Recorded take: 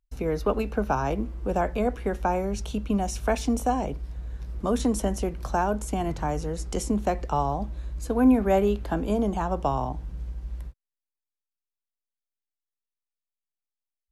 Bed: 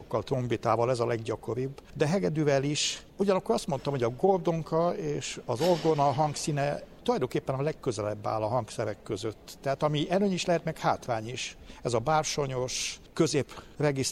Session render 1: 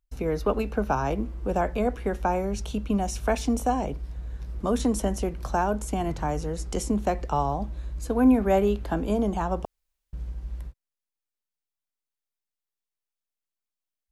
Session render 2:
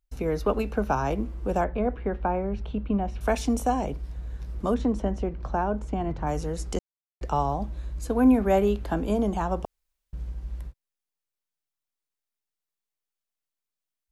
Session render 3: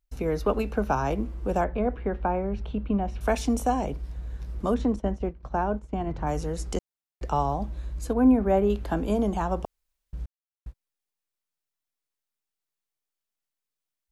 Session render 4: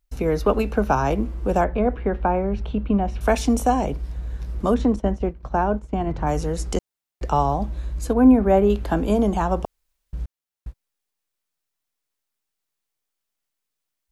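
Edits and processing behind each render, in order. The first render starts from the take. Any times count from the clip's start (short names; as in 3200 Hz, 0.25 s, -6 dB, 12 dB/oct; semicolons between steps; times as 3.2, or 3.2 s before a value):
9.65–10.13 room tone
1.64–3.21 air absorption 400 m; 4.74–6.27 tape spacing loss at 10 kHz 25 dB; 6.79–7.21 mute
4.96–6.14 expander -27 dBFS; 8.13–8.7 high shelf 2200 Hz -12 dB; 10.26–10.66 mute
gain +5.5 dB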